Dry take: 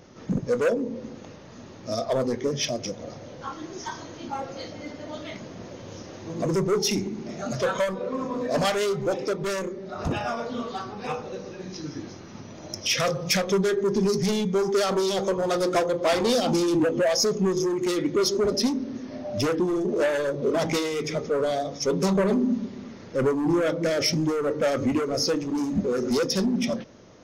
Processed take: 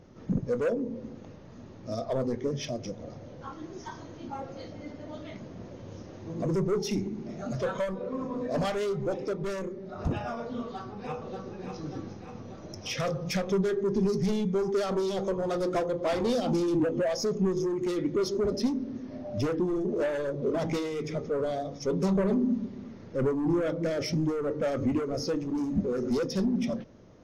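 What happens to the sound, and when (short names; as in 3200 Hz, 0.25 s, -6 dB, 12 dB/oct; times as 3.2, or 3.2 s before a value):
10.62–11.54 echo throw 0.59 s, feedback 60%, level -6 dB
whole clip: tilt -2 dB/oct; gain -7 dB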